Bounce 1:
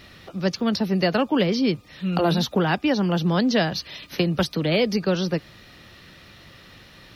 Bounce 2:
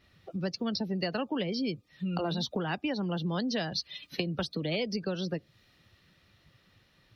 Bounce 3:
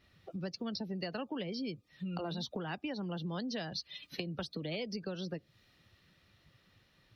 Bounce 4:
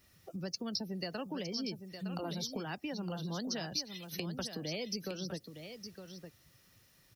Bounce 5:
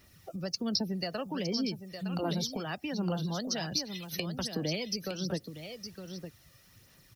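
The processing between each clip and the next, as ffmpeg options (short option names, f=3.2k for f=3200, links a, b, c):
-af "afftdn=nr=18:nf=-32,acompressor=threshold=-33dB:ratio=3,adynamicequalizer=threshold=0.00316:dfrequency=2400:dqfactor=0.7:tfrequency=2400:tqfactor=0.7:attack=5:release=100:ratio=0.375:range=2.5:mode=boostabove:tftype=highshelf"
-af "acompressor=threshold=-39dB:ratio=1.5,volume=-3dB"
-filter_complex "[0:a]aexciter=amount=4.8:drive=6.7:freq=5.4k,asplit=2[a][b];[b]aecho=0:1:912:0.355[c];[a][c]amix=inputs=2:normalize=0,volume=-1dB"
-af "aphaser=in_gain=1:out_gain=1:delay=1.7:decay=0.36:speed=1.3:type=sinusoidal,volume=4dB"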